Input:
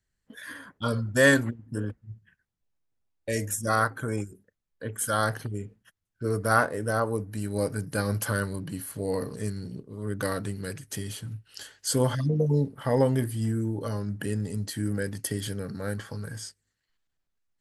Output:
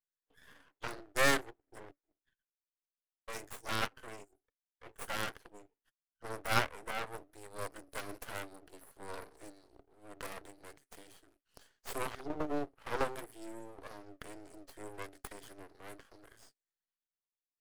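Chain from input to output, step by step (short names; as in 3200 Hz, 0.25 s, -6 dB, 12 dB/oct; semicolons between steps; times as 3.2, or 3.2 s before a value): added harmonics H 3 -24 dB, 7 -22 dB, 8 -17 dB, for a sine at -7 dBFS; rippled Chebyshev high-pass 280 Hz, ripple 3 dB; half-wave rectifier; gain -2 dB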